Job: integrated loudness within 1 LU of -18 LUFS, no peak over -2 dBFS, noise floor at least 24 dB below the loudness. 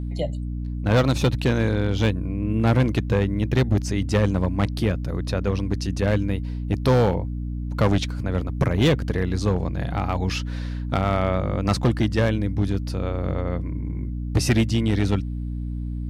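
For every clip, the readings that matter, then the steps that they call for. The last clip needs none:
clipped samples 1.8%; clipping level -13.0 dBFS; hum 60 Hz; highest harmonic 300 Hz; hum level -26 dBFS; loudness -23.5 LUFS; peak level -13.0 dBFS; loudness target -18.0 LUFS
-> clip repair -13 dBFS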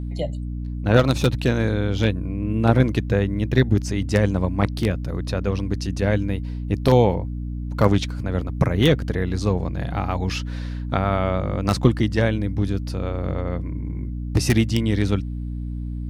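clipped samples 0.0%; hum 60 Hz; highest harmonic 300 Hz; hum level -26 dBFS
-> de-hum 60 Hz, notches 5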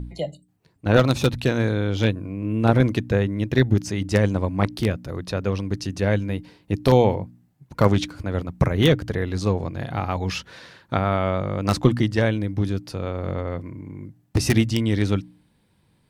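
hum not found; loudness -23.0 LUFS; peak level -3.5 dBFS; loudness target -18.0 LUFS
-> trim +5 dB; peak limiter -2 dBFS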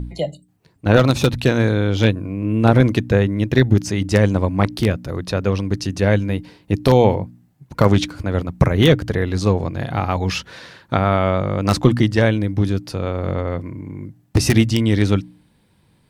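loudness -18.5 LUFS; peak level -2.0 dBFS; noise floor -58 dBFS

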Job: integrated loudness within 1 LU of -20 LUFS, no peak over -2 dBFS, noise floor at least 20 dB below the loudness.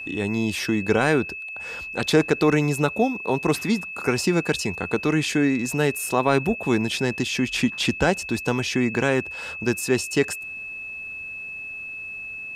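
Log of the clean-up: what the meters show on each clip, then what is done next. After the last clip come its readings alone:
steady tone 2.6 kHz; tone level -32 dBFS; loudness -23.5 LUFS; peak level -6.0 dBFS; loudness target -20.0 LUFS
-> band-stop 2.6 kHz, Q 30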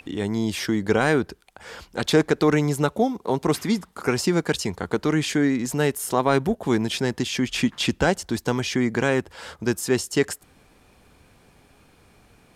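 steady tone not found; loudness -23.5 LUFS; peak level -6.5 dBFS; loudness target -20.0 LUFS
-> trim +3.5 dB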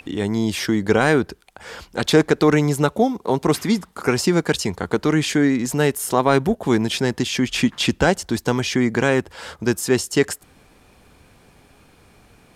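loudness -20.0 LUFS; peak level -3.0 dBFS; noise floor -53 dBFS

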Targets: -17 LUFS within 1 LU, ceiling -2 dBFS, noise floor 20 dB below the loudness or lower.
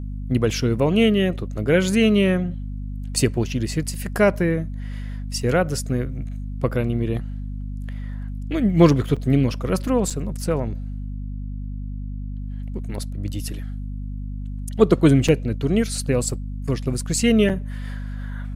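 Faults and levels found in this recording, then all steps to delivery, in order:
dropouts 4; longest dropout 5.5 ms; hum 50 Hz; highest harmonic 250 Hz; hum level -27 dBFS; loudness -22.0 LUFS; peak level -2.0 dBFS; loudness target -17.0 LUFS
-> interpolate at 9.16/10.10/15.28/17.49 s, 5.5 ms; de-hum 50 Hz, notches 5; trim +5 dB; peak limiter -2 dBFS

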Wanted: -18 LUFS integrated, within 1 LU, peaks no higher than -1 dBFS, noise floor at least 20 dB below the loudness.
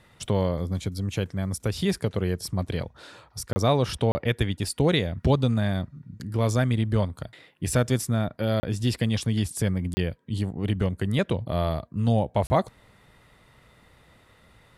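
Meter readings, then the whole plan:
dropouts 5; longest dropout 30 ms; loudness -26.5 LUFS; peak level -11.0 dBFS; loudness target -18.0 LUFS
-> interpolate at 3.53/4.12/8.60/9.94/12.47 s, 30 ms; trim +8.5 dB

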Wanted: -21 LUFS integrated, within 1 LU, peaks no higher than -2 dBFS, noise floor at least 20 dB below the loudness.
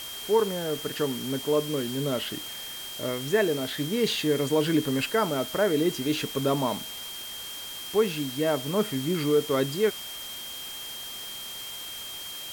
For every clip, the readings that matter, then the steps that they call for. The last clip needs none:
steady tone 3.2 kHz; tone level -38 dBFS; noise floor -38 dBFS; noise floor target -48 dBFS; loudness -28.0 LUFS; peak level -12.0 dBFS; loudness target -21.0 LUFS
-> band-stop 3.2 kHz, Q 30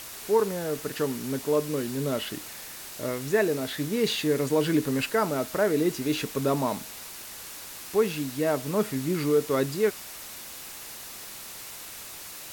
steady tone not found; noise floor -42 dBFS; noise floor target -48 dBFS
-> noise reduction 6 dB, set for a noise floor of -42 dBFS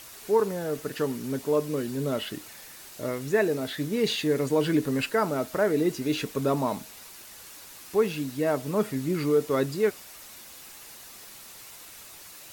noise floor -47 dBFS; noise floor target -48 dBFS
-> noise reduction 6 dB, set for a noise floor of -47 dBFS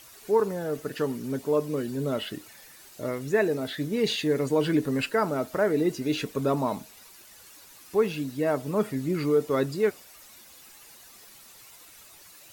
noise floor -51 dBFS; loudness -27.5 LUFS; peak level -12.0 dBFS; loudness target -21.0 LUFS
-> trim +6.5 dB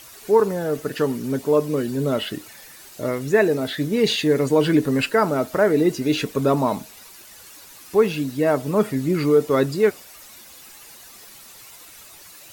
loudness -21.0 LUFS; peak level -5.5 dBFS; noise floor -45 dBFS

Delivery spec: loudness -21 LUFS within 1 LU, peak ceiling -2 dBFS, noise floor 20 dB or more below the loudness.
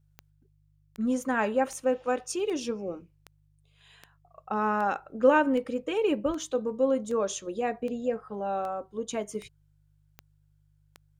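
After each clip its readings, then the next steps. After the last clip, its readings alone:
clicks found 15; hum 50 Hz; highest harmonic 150 Hz; hum level -62 dBFS; loudness -29.0 LUFS; peak level -8.5 dBFS; loudness target -21.0 LUFS
-> de-click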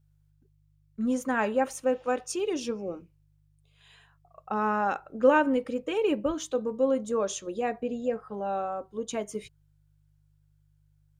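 clicks found 0; hum 50 Hz; highest harmonic 150 Hz; hum level -62 dBFS
-> de-hum 50 Hz, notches 3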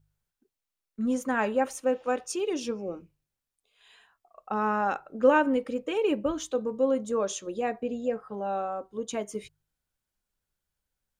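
hum not found; loudness -29.0 LUFS; peak level -8.5 dBFS; loudness target -21.0 LUFS
-> trim +8 dB; peak limiter -2 dBFS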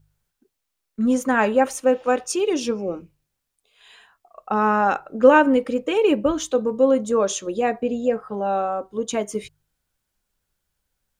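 loudness -21.0 LUFS; peak level -2.0 dBFS; noise floor -79 dBFS

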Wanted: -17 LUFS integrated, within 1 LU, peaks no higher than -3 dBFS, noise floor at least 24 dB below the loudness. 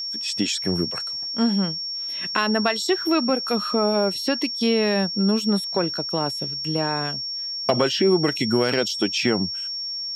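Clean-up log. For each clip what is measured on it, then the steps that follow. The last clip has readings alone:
steady tone 5.5 kHz; tone level -27 dBFS; loudness -22.5 LUFS; peak level -4.5 dBFS; loudness target -17.0 LUFS
-> band-stop 5.5 kHz, Q 30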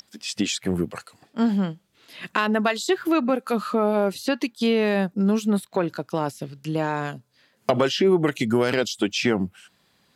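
steady tone not found; loudness -24.0 LUFS; peak level -5.0 dBFS; loudness target -17.0 LUFS
-> trim +7 dB; peak limiter -3 dBFS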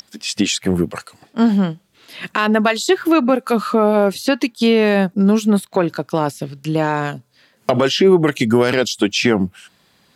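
loudness -17.0 LUFS; peak level -3.0 dBFS; noise floor -58 dBFS

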